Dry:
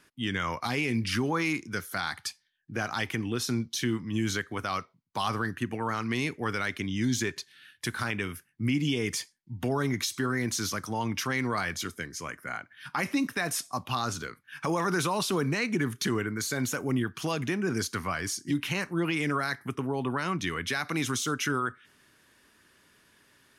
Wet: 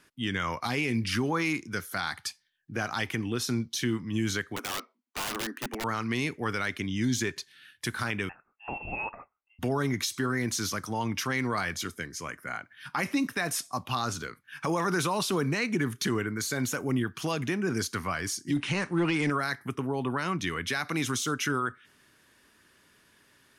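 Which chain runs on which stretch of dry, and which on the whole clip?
0:04.56–0:05.84: Butterworth high-pass 220 Hz 96 dB per octave + high-shelf EQ 4,400 Hz −8.5 dB + wrap-around overflow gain 27 dB
0:08.29–0:09.59: high-pass filter 420 Hz 24 dB per octave + voice inversion scrambler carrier 3,000 Hz
0:18.56–0:19.30: de-essing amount 95% + leveller curve on the samples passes 1 + linear-phase brick-wall low-pass 10,000 Hz
whole clip: no processing

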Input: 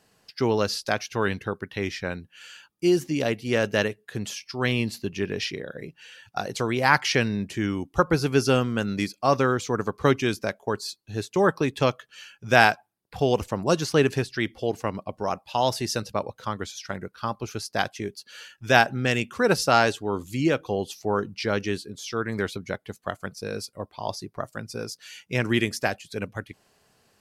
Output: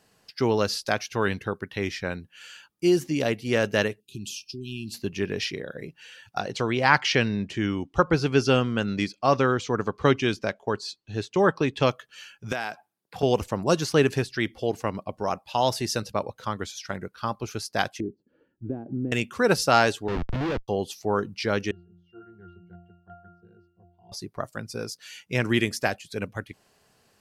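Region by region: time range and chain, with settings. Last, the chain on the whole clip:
0:04.00–0:04.94: downward compressor 4 to 1, threshold −31 dBFS + linear-phase brick-wall band-stop 400–2,400 Hz
0:06.39–0:11.86: low-pass filter 5,900 Hz + parametric band 3,000 Hz +3.5 dB 0.32 octaves
0:12.52–0:13.23: high-pass filter 150 Hz + downward compressor, threshold −26 dBFS
0:18.00–0:19.12: downward compressor 2.5 to 1, threshold −31 dBFS + low-pass with resonance 310 Hz, resonance Q 2.9
0:20.08–0:20.68: comparator with hysteresis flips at −32.5 dBFS + high-frequency loss of the air 230 metres + multiband upward and downward expander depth 40%
0:21.71–0:24.12: low-pass filter 4,300 Hz + resonances in every octave F, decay 0.58 s
whole clip: no processing

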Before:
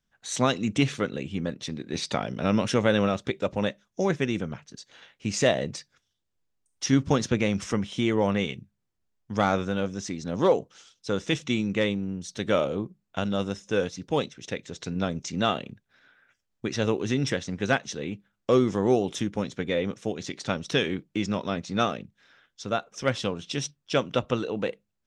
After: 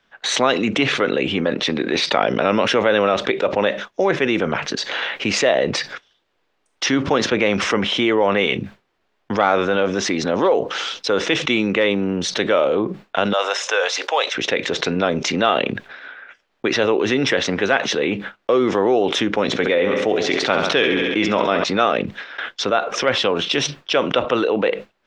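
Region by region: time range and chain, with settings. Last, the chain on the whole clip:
0:13.33–0:14.35: high-pass filter 600 Hz 24 dB per octave + parametric band 7,600 Hz +5.5 dB 0.78 octaves
0:19.46–0:21.64: repeating echo 68 ms, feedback 59%, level −11 dB + level that may fall only so fast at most 78 dB per second
whole clip: noise gate with hold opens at −47 dBFS; three-way crossover with the lows and the highs turned down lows −19 dB, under 320 Hz, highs −23 dB, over 3,900 Hz; envelope flattener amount 70%; level +4 dB

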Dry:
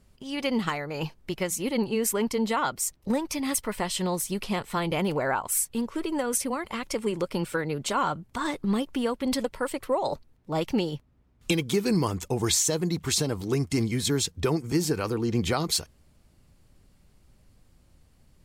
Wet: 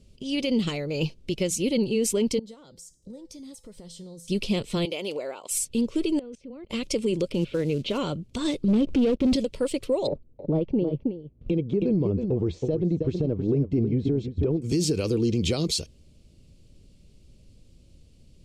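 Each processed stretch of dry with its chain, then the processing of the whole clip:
0:02.39–0:04.28: parametric band 2,600 Hz −15 dB 0.5 octaves + downward compressor 4 to 1, threshold −36 dBFS + tuned comb filter 170 Hz, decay 0.47 s, harmonics odd, mix 70%
0:04.85–0:05.51: high-pass filter 510 Hz + parametric band 1,600 Hz −4.5 dB 0.24 octaves + downward compressor 2 to 1, threshold −32 dBFS
0:06.19–0:06.70: head-to-tape spacing loss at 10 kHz 33 dB + output level in coarse steps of 22 dB
0:07.32–0:07.98: low-pass filter 3,500 Hz 24 dB per octave + log-companded quantiser 6 bits
0:08.68–0:09.36: low-pass filter 1,000 Hz 6 dB per octave + leveller curve on the samples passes 3
0:10.07–0:14.62: low-pass filter 1,000 Hz + transient designer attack +11 dB, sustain −2 dB + single-tap delay 319 ms −13.5 dB
whole clip: low-pass filter 7,600 Hz 12 dB per octave; flat-topped bell 1,200 Hz −16 dB; brickwall limiter −21.5 dBFS; level +5.5 dB

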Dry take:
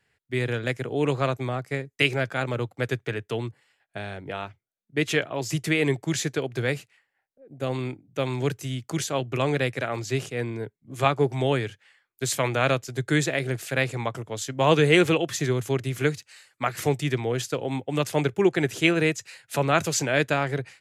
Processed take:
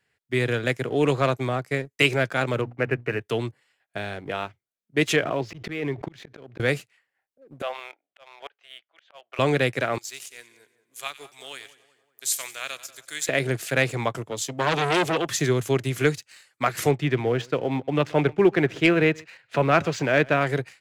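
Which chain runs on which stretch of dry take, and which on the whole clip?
0:02.61–0:03.21: linear-phase brick-wall low-pass 3,000 Hz + mains-hum notches 60/120/180/240/300 Hz
0:05.16–0:06.60: high-frequency loss of the air 300 metres + volume swells 532 ms + background raised ahead of every attack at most 37 dB per second
0:07.62–0:09.39: Chebyshev band-pass filter 620–3,300 Hz, order 3 + volume swells 459 ms
0:09.98–0:13.29: first difference + echo with a time of its own for lows and highs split 1,600 Hz, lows 189 ms, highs 93 ms, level −13 dB
0:14.31–0:15.29: high-pass filter 110 Hz 24 dB per octave + parametric band 1,500 Hz −11.5 dB 0.57 octaves + saturating transformer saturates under 2,200 Hz
0:16.91–0:20.41: low-pass filter 2,800 Hz + single-tap delay 129 ms −23.5 dB
whole clip: low-shelf EQ 86 Hz −8 dB; notch filter 840 Hz, Q 23; leveller curve on the samples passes 1

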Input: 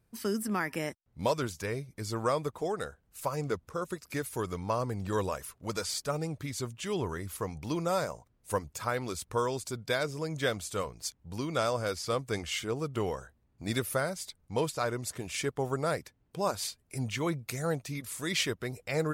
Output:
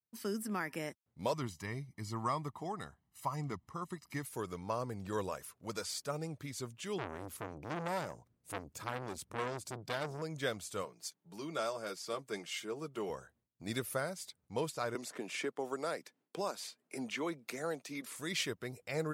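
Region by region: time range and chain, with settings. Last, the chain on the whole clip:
0:01.33–0:04.25: high-shelf EQ 4,800 Hz −6.5 dB + comb filter 1 ms, depth 77%
0:06.98–0:10.22: low-shelf EQ 340 Hz +8 dB + saturating transformer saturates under 1,800 Hz
0:10.85–0:13.10: high-pass filter 170 Hz 24 dB per octave + notch comb filter 250 Hz
0:14.95–0:18.16: high-pass filter 210 Hz 24 dB per octave + high-shelf EQ 9,300 Hz −7.5 dB + multiband upward and downward compressor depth 70%
whole clip: downward expander −59 dBFS; high-pass filter 110 Hz; level −6 dB

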